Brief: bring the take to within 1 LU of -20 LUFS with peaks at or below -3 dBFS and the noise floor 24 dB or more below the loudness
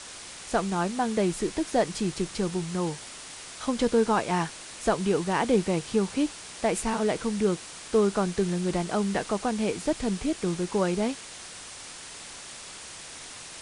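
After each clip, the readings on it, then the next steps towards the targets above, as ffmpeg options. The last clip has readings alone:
noise floor -43 dBFS; noise floor target -52 dBFS; loudness -27.5 LUFS; peak -12.0 dBFS; loudness target -20.0 LUFS
-> -af "afftdn=nr=9:nf=-43"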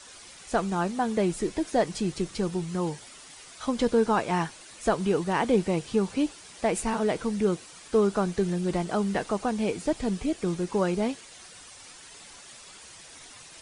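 noise floor -48 dBFS; noise floor target -52 dBFS
-> -af "afftdn=nr=6:nf=-48"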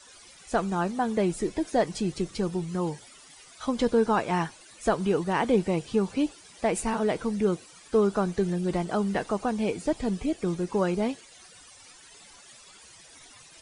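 noise floor -52 dBFS; loudness -28.0 LUFS; peak -12.0 dBFS; loudness target -20.0 LUFS
-> -af "volume=8dB"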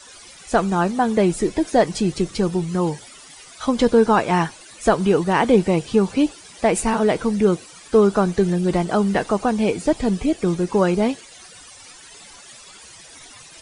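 loudness -20.0 LUFS; peak -4.0 dBFS; noise floor -44 dBFS

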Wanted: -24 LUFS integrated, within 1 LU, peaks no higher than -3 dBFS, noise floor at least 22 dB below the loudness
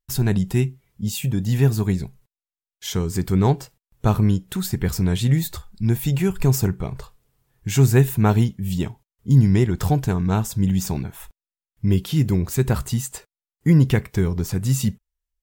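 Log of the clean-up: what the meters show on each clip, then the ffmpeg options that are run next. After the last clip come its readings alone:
loudness -21.0 LUFS; peak -3.0 dBFS; loudness target -24.0 LUFS
-> -af "volume=-3dB"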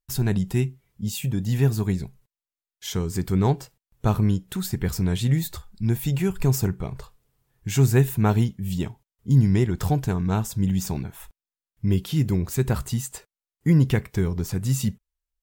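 loudness -24.0 LUFS; peak -6.0 dBFS; noise floor -94 dBFS

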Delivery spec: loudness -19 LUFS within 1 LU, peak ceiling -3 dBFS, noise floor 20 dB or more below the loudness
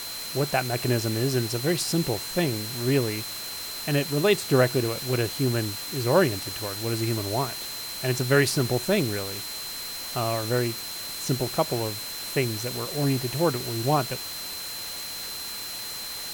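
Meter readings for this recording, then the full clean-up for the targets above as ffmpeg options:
steady tone 4100 Hz; tone level -36 dBFS; noise floor -35 dBFS; noise floor target -47 dBFS; loudness -26.5 LUFS; peak -7.5 dBFS; loudness target -19.0 LUFS
-> -af "bandreject=f=4.1k:w=30"
-af "afftdn=nr=12:nf=-35"
-af "volume=7.5dB,alimiter=limit=-3dB:level=0:latency=1"

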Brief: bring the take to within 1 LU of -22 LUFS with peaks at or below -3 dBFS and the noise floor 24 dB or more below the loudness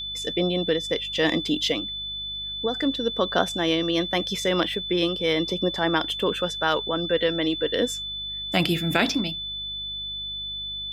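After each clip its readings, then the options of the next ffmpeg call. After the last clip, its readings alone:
hum 50 Hz; harmonics up to 200 Hz; hum level -44 dBFS; steady tone 3500 Hz; tone level -30 dBFS; loudness -25.0 LUFS; peak -5.0 dBFS; loudness target -22.0 LUFS
-> -af "bandreject=f=50:t=h:w=4,bandreject=f=100:t=h:w=4,bandreject=f=150:t=h:w=4,bandreject=f=200:t=h:w=4"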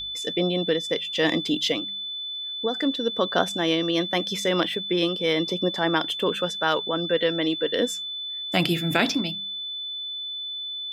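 hum none; steady tone 3500 Hz; tone level -30 dBFS
-> -af "bandreject=f=3.5k:w=30"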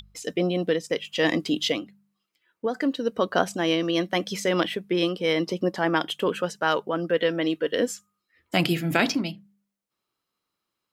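steady tone none; loudness -25.5 LUFS; peak -5.5 dBFS; loudness target -22.0 LUFS
-> -af "volume=3.5dB,alimiter=limit=-3dB:level=0:latency=1"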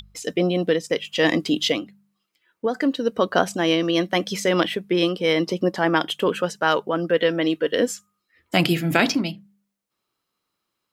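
loudness -22.0 LUFS; peak -3.0 dBFS; noise floor -80 dBFS

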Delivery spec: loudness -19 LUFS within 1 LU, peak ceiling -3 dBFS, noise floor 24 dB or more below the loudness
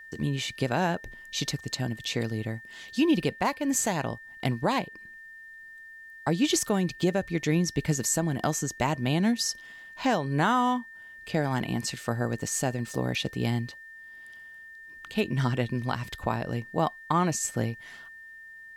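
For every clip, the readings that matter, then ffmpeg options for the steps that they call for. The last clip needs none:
steady tone 1800 Hz; tone level -44 dBFS; loudness -28.5 LUFS; peak -13.5 dBFS; loudness target -19.0 LUFS
-> -af "bandreject=f=1.8k:w=30"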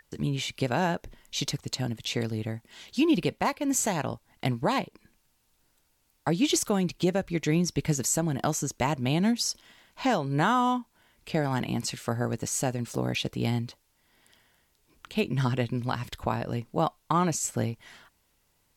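steady tone none; loudness -28.5 LUFS; peak -13.5 dBFS; loudness target -19.0 LUFS
-> -af "volume=9.5dB"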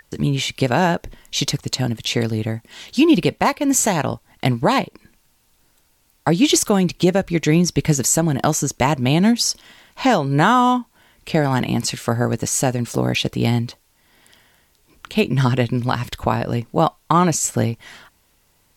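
loudness -19.0 LUFS; peak -4.0 dBFS; noise floor -61 dBFS

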